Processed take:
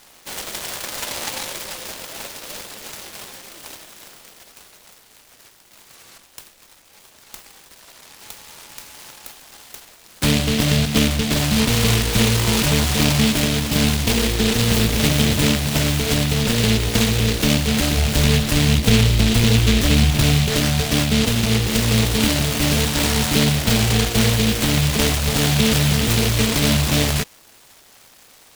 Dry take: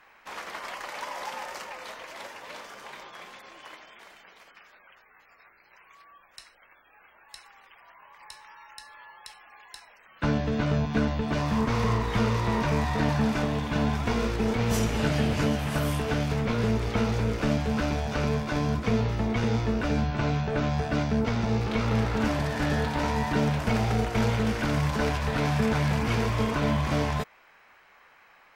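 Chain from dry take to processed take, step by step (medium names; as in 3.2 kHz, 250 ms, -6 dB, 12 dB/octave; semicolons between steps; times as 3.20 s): 17.97–20.47 s: bass shelf 120 Hz +7.5 dB; delay time shaken by noise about 3 kHz, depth 0.28 ms; trim +8 dB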